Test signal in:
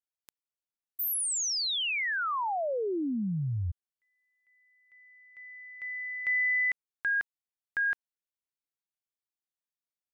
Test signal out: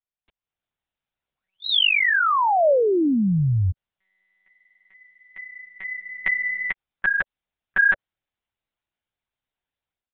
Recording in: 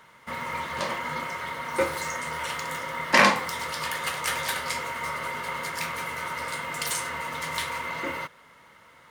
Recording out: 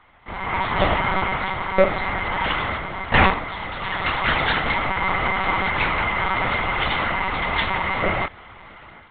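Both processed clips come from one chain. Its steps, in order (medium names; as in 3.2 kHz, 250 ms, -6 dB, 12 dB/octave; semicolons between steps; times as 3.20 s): peaking EQ 580 Hz +4 dB 0.41 oct; level rider gain up to 12 dB; monotone LPC vocoder at 8 kHz 190 Hz; trim -1 dB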